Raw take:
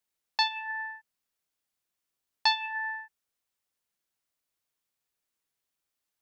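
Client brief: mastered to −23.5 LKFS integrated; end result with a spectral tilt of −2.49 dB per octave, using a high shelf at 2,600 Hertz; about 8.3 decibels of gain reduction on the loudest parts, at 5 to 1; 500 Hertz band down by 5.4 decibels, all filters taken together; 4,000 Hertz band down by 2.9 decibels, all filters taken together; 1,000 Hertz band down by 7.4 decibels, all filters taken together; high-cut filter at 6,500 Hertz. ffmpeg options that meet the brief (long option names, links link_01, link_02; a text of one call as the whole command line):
ffmpeg -i in.wav -af "lowpass=6500,equalizer=frequency=500:width_type=o:gain=-4,equalizer=frequency=1000:width_type=o:gain=-7.5,highshelf=frequency=2600:gain=3.5,equalizer=frequency=4000:width_type=o:gain=-5,acompressor=threshold=-33dB:ratio=5,volume=14.5dB" out.wav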